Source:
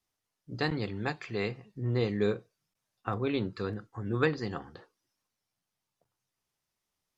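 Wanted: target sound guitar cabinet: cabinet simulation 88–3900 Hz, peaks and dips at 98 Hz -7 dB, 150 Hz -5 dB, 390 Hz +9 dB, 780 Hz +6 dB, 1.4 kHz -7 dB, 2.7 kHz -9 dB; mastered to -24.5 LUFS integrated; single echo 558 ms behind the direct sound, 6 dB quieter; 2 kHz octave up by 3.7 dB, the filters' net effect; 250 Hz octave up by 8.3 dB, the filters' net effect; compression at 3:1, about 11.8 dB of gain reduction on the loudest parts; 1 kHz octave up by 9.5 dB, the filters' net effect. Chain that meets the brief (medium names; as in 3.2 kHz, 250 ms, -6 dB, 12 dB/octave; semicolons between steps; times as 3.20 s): peaking EQ 250 Hz +8.5 dB; peaking EQ 1 kHz +8.5 dB; peaking EQ 2 kHz +5.5 dB; compression 3:1, threshold -32 dBFS; cabinet simulation 88–3900 Hz, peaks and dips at 98 Hz -7 dB, 150 Hz -5 dB, 390 Hz +9 dB, 780 Hz +6 dB, 1.4 kHz -7 dB, 2.7 kHz -9 dB; delay 558 ms -6 dB; trim +9 dB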